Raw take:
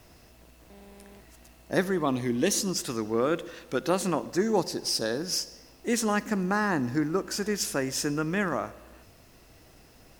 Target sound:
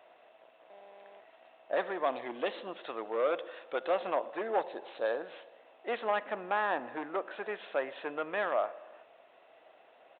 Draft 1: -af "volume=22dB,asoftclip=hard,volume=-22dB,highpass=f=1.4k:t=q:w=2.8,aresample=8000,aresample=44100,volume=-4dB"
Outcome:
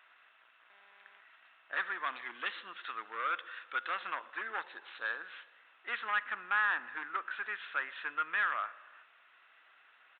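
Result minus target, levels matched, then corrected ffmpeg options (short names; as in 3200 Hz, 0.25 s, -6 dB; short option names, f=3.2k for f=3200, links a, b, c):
500 Hz band -18.5 dB
-af "volume=22dB,asoftclip=hard,volume=-22dB,highpass=f=630:t=q:w=2.8,aresample=8000,aresample=44100,volume=-4dB"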